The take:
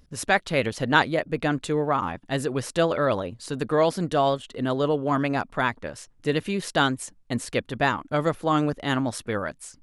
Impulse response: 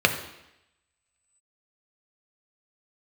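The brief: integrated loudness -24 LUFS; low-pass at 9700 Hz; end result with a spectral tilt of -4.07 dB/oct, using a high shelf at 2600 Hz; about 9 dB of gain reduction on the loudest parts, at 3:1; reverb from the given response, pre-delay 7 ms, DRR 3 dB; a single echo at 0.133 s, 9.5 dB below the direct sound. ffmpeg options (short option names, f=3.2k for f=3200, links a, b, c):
-filter_complex "[0:a]lowpass=9.7k,highshelf=f=2.6k:g=8,acompressor=threshold=-23dB:ratio=3,aecho=1:1:133:0.335,asplit=2[a][b];[1:a]atrim=start_sample=2205,adelay=7[c];[b][c]afir=irnorm=-1:irlink=0,volume=-20.5dB[d];[a][d]amix=inputs=2:normalize=0,volume=2dB"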